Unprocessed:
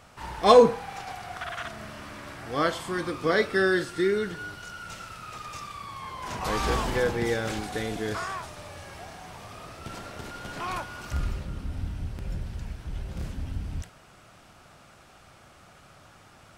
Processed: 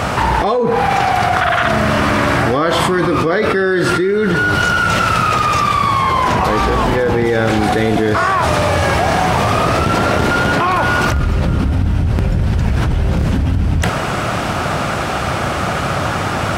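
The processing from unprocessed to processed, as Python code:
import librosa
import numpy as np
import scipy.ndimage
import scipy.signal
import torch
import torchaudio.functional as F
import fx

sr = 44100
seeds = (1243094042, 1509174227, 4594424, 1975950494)

y = fx.dynamic_eq(x, sr, hz=7000.0, q=1.1, threshold_db=-49.0, ratio=4.0, max_db=-3)
y = scipy.signal.sosfilt(scipy.signal.butter(2, 55.0, 'highpass', fs=sr, output='sos'), y)
y = fx.high_shelf(y, sr, hz=3300.0, db=-9.5)
y = fx.env_flatten(y, sr, amount_pct=100)
y = y * 10.0 ** (-3.5 / 20.0)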